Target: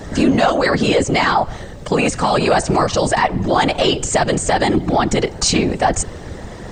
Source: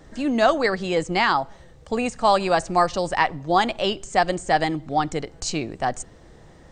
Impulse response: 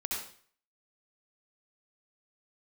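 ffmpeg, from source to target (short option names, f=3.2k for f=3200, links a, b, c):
-af "acompressor=threshold=-24dB:ratio=6,apsyclip=27dB,afftfilt=real='hypot(re,im)*cos(2*PI*random(0))':imag='hypot(re,im)*sin(2*PI*random(1))':win_size=512:overlap=0.75,volume=-4dB"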